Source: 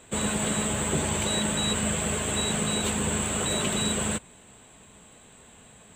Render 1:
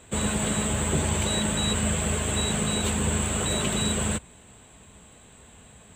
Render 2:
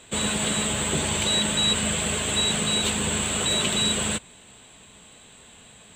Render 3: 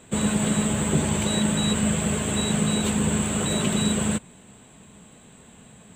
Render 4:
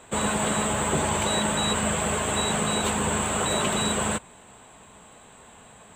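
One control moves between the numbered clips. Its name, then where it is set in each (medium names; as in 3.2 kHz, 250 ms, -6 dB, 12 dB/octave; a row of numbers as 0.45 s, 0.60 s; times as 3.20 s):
peaking EQ, frequency: 65 Hz, 3.8 kHz, 180 Hz, 950 Hz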